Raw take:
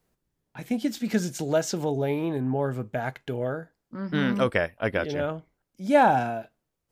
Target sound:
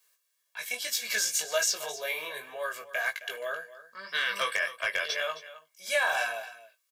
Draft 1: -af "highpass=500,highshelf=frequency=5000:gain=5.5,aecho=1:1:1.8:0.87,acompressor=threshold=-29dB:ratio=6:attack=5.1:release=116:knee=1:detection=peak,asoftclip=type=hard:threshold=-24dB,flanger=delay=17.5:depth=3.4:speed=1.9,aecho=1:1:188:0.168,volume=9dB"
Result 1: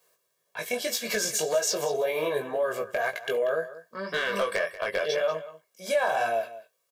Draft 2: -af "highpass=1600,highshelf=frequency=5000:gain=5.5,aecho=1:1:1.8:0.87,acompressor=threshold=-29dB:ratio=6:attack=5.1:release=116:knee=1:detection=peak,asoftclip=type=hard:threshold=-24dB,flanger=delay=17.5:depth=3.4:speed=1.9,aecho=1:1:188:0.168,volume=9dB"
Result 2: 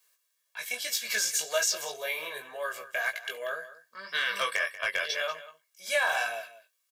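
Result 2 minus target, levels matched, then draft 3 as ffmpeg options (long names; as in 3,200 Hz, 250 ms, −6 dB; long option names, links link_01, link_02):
echo 77 ms early
-af "highpass=1600,highshelf=frequency=5000:gain=5.5,aecho=1:1:1.8:0.87,acompressor=threshold=-29dB:ratio=6:attack=5.1:release=116:knee=1:detection=peak,asoftclip=type=hard:threshold=-24dB,flanger=delay=17.5:depth=3.4:speed=1.9,aecho=1:1:265:0.168,volume=9dB"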